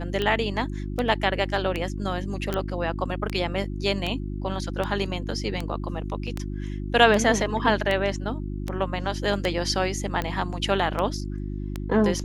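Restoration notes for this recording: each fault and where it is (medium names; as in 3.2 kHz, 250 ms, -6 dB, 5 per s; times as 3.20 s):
hum 50 Hz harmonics 7 -31 dBFS
tick 78 rpm -14 dBFS
2.54 s: pop -13 dBFS
6.27–6.28 s: dropout 5.2 ms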